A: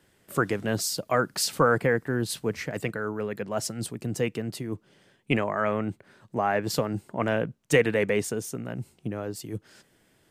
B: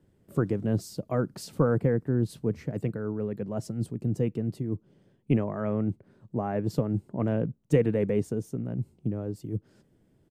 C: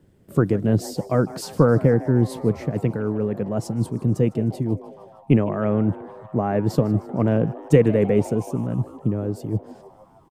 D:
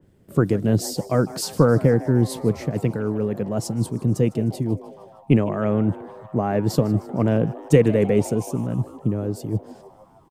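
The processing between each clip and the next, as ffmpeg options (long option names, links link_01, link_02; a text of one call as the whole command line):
ffmpeg -i in.wav -af "firequalizer=gain_entry='entry(120,0);entry(720,-12);entry(1700,-20)':delay=0.05:min_phase=1,volume=4.5dB" out.wav
ffmpeg -i in.wav -filter_complex "[0:a]asplit=7[link_01][link_02][link_03][link_04][link_05][link_06][link_07];[link_02]adelay=154,afreqshift=140,volume=-19dB[link_08];[link_03]adelay=308,afreqshift=280,volume=-23.2dB[link_09];[link_04]adelay=462,afreqshift=420,volume=-27.3dB[link_10];[link_05]adelay=616,afreqshift=560,volume=-31.5dB[link_11];[link_06]adelay=770,afreqshift=700,volume=-35.6dB[link_12];[link_07]adelay=924,afreqshift=840,volume=-39.8dB[link_13];[link_01][link_08][link_09][link_10][link_11][link_12][link_13]amix=inputs=7:normalize=0,volume=7.5dB" out.wav
ffmpeg -i in.wav -af "adynamicequalizer=threshold=0.00631:dfrequency=2900:dqfactor=0.7:tfrequency=2900:tqfactor=0.7:attack=5:release=100:ratio=0.375:range=3.5:mode=boostabove:tftype=highshelf" out.wav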